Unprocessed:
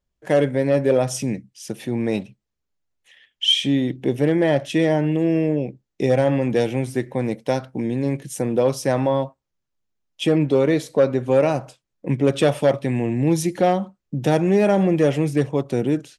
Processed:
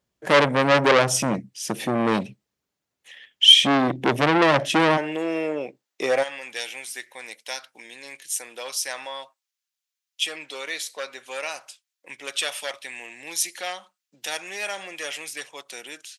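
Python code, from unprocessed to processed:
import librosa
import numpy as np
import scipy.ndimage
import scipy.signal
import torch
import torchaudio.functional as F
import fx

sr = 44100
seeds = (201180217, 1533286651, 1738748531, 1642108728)

y = fx.bessel_highpass(x, sr, hz=fx.steps((0.0, 150.0), (4.96, 880.0), (6.22, 2800.0)), order=2)
y = fx.transformer_sat(y, sr, knee_hz=2200.0)
y = y * 10.0 ** (6.5 / 20.0)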